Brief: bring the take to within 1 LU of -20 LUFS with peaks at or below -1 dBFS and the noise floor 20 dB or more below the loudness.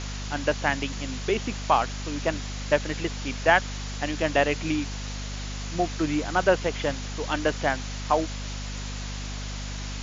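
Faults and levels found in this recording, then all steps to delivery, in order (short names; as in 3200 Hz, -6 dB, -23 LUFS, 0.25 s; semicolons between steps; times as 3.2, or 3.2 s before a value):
hum 50 Hz; harmonics up to 250 Hz; hum level -32 dBFS; noise floor -34 dBFS; noise floor target -48 dBFS; loudness -27.5 LUFS; peak -4.5 dBFS; loudness target -20.0 LUFS
-> notches 50/100/150/200/250 Hz; denoiser 14 dB, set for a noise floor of -34 dBFS; gain +7.5 dB; limiter -1 dBFS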